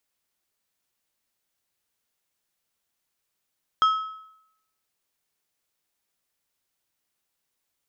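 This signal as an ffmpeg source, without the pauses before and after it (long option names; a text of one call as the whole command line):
ffmpeg -f lavfi -i "aevalsrc='0.2*pow(10,-3*t/0.78)*sin(2*PI*1290*t)+0.0501*pow(10,-3*t/0.593)*sin(2*PI*3225*t)+0.0126*pow(10,-3*t/0.515)*sin(2*PI*5160*t)+0.00316*pow(10,-3*t/0.481)*sin(2*PI*6450*t)+0.000794*pow(10,-3*t/0.445)*sin(2*PI*8385*t)':duration=1.55:sample_rate=44100" out.wav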